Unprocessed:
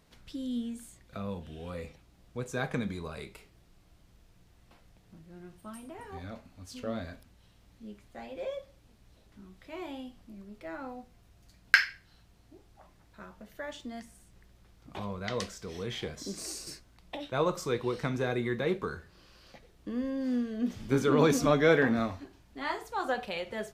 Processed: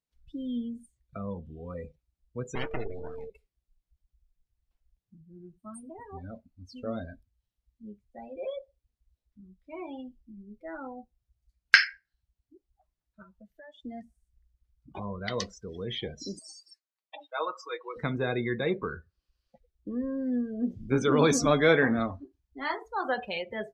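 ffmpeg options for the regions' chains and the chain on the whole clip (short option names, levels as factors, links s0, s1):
-filter_complex "[0:a]asettb=1/sr,asplit=3[s0][s1][s2];[s0]atrim=end=2.554[s3];[s1]atrim=start=2.55:end=3.3,asetpts=PTS-STARTPTS,afade=t=in:d=0.004:c=qsin,afade=t=out:st=0.746:d=0.004:c=qsin,highshelf=f=5200:g=-7.5,aeval=exprs='abs(val(0))':c=same,aeval=exprs='val(0)+0.01*sin(2*PI*450*n/s)':c=same[s4];[s2]atrim=start=3.296[s5];[s3][s4]acrossfade=d=0.004:c1=hsin:c2=qsin[s6];[s6][s5]acrossfade=d=0.004:c1=qsin:c2=hsin,asettb=1/sr,asplit=3[s7][s8][s9];[s7]atrim=end=13.224[s10];[s8]atrim=start=13.22:end=13.84,asetpts=PTS-STARTPTS,afade=t=in:d=0.004:c=qsin,afade=t=out:st=0.616:d=0.004:c=qsin,equalizer=f=290:w=0.59:g=-2.5,acompressor=threshold=0.00631:ratio=10:attack=3.2:release=140:knee=1:detection=peak[s11];[s9]atrim=start=13.836[s12];[s10][s11]acrossfade=d=0.004:c1=hsin:c2=qsin[s13];[s13][s12]acrossfade=d=0.004:c1=qsin:c2=hsin,asettb=1/sr,asplit=3[s14][s15][s16];[s14]atrim=end=16.394[s17];[s15]atrim=start=16.39:end=17.96,asetpts=PTS-STARTPTS,afade=t=in:d=0.004:c=qsin,afade=t=out:st=1.566:d=0.004:c=qsin,highpass=840,highshelf=f=2200:g=-8.5,aecho=1:1:6.3:0.68,atrim=end_sample=69237[s18];[s16]atrim=start=17.956[s19];[s17][s18]acrossfade=d=0.004:c1=hsin:c2=qsin[s20];[s20][s19]acrossfade=d=0.004:c1=qsin:c2=hsin,afftdn=nr=33:nf=-40,highshelf=f=2900:g=8,volume=1.12"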